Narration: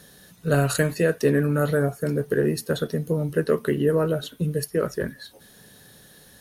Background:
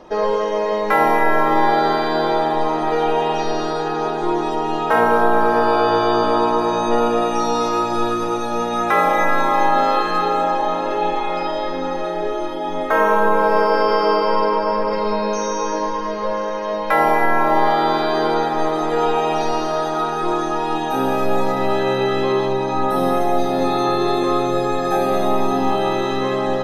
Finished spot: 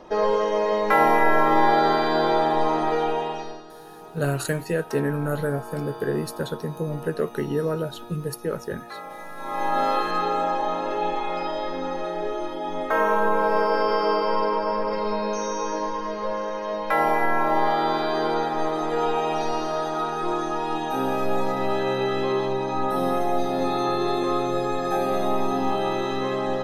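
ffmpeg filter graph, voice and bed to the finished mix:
ffmpeg -i stem1.wav -i stem2.wav -filter_complex "[0:a]adelay=3700,volume=-4dB[link_01];[1:a]volume=14dB,afade=type=out:start_time=2.77:duration=0.86:silence=0.105925,afade=type=in:start_time=9.36:duration=0.48:silence=0.149624[link_02];[link_01][link_02]amix=inputs=2:normalize=0" out.wav

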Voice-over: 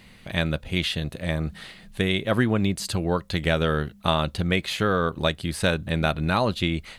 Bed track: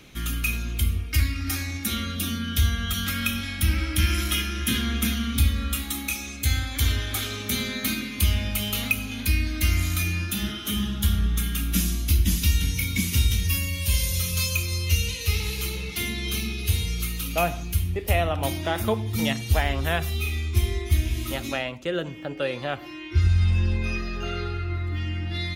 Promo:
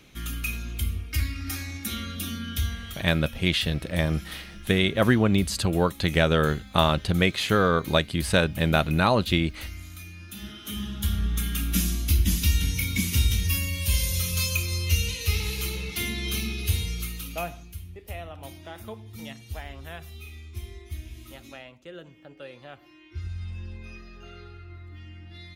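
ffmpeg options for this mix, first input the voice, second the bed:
ffmpeg -i stem1.wav -i stem2.wav -filter_complex "[0:a]adelay=2700,volume=1.5dB[link_01];[1:a]volume=11dB,afade=type=out:start_time=2.5:duration=0.56:silence=0.251189,afade=type=in:start_time=10.17:duration=1.43:silence=0.16788,afade=type=out:start_time=16.62:duration=1.11:silence=0.199526[link_02];[link_01][link_02]amix=inputs=2:normalize=0" out.wav

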